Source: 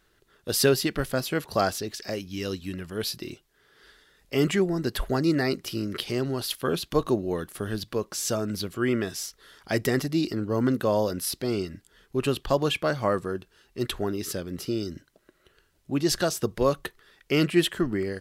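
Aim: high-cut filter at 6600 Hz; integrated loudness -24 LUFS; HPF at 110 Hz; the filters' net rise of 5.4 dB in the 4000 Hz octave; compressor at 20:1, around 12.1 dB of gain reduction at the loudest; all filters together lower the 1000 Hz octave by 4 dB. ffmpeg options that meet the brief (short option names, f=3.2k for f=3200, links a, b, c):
-af "highpass=110,lowpass=6.6k,equalizer=f=1k:t=o:g=-6,equalizer=f=4k:t=o:g=8,acompressor=threshold=-27dB:ratio=20,volume=9dB"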